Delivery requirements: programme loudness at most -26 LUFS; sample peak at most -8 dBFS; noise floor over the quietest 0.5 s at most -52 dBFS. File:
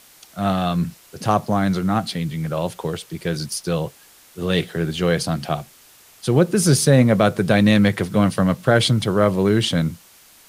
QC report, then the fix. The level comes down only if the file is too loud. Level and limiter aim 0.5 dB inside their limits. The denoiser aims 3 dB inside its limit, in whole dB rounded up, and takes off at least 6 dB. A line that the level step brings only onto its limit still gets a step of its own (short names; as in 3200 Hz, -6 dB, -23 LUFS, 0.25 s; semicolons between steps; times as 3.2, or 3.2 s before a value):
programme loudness -20.0 LUFS: fail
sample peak -3.5 dBFS: fail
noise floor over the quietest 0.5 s -50 dBFS: fail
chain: gain -6.5 dB